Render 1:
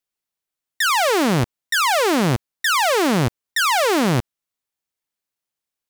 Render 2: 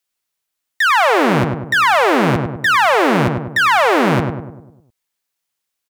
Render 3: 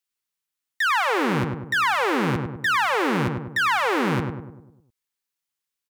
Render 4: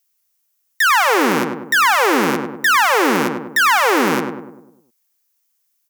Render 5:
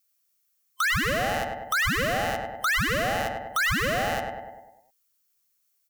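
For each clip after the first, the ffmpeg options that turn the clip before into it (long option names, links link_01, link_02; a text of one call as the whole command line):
ffmpeg -i in.wav -filter_complex "[0:a]acrossover=split=2700[link_01][link_02];[link_02]acompressor=threshold=-38dB:ratio=4:attack=1:release=60[link_03];[link_01][link_03]amix=inputs=2:normalize=0,tiltshelf=frequency=770:gain=-4,asplit=2[link_04][link_05];[link_05]adelay=100,lowpass=frequency=1300:poles=1,volume=-4dB,asplit=2[link_06][link_07];[link_07]adelay=100,lowpass=frequency=1300:poles=1,volume=0.53,asplit=2[link_08][link_09];[link_09]adelay=100,lowpass=frequency=1300:poles=1,volume=0.53,asplit=2[link_10][link_11];[link_11]adelay=100,lowpass=frequency=1300:poles=1,volume=0.53,asplit=2[link_12][link_13];[link_13]adelay=100,lowpass=frequency=1300:poles=1,volume=0.53,asplit=2[link_14][link_15];[link_15]adelay=100,lowpass=frequency=1300:poles=1,volume=0.53,asplit=2[link_16][link_17];[link_17]adelay=100,lowpass=frequency=1300:poles=1,volume=0.53[link_18];[link_06][link_08][link_10][link_12][link_14][link_16][link_18]amix=inputs=7:normalize=0[link_19];[link_04][link_19]amix=inputs=2:normalize=0,volume=4.5dB" out.wav
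ffmpeg -i in.wav -af "equalizer=frequency=650:width=5.8:gain=-14.5,volume=-7.5dB" out.wav
ffmpeg -i in.wav -af "aexciter=amount=2.8:drive=3.1:freq=5200,highpass=frequency=220:width=0.5412,highpass=frequency=220:width=1.3066,volume=7.5dB" out.wav
ffmpeg -i in.wav -af "afftfilt=real='real(if(between(b,1,1008),(2*floor((b-1)/48)+1)*48-b,b),0)':imag='imag(if(between(b,1,1008),(2*floor((b-1)/48)+1)*48-b,b),0)*if(between(b,1,1008),-1,1)':win_size=2048:overlap=0.75,acompressor=threshold=-30dB:ratio=1.5,volume=-4dB" out.wav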